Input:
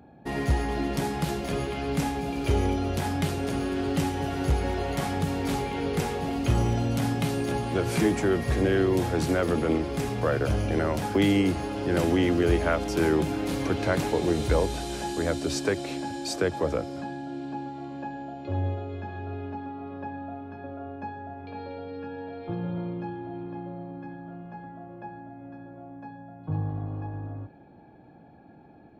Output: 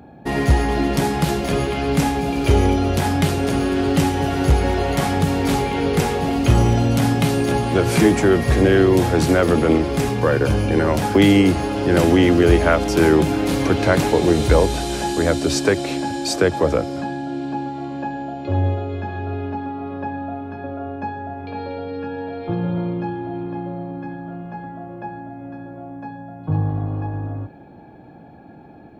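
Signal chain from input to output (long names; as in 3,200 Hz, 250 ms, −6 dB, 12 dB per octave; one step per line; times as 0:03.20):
0:10.11–0:10.88: notch comb filter 660 Hz
level +9 dB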